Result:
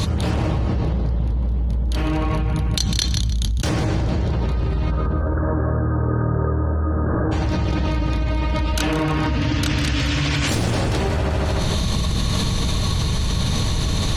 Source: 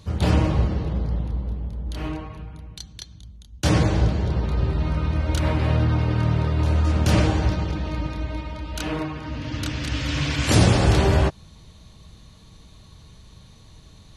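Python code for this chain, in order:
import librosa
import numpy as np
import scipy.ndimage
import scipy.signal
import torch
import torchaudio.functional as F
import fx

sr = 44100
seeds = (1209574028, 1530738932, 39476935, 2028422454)

y = np.minimum(x, 2.0 * 10.0 ** (-14.0 / 20.0) - x)
y = fx.cheby_ripple(y, sr, hz=1700.0, ripple_db=6, at=(4.9, 7.31), fade=0.02)
y = fx.echo_feedback(y, sr, ms=152, feedback_pct=30, wet_db=-12)
y = fx.env_flatten(y, sr, amount_pct=100)
y = y * librosa.db_to_amplitude(-6.0)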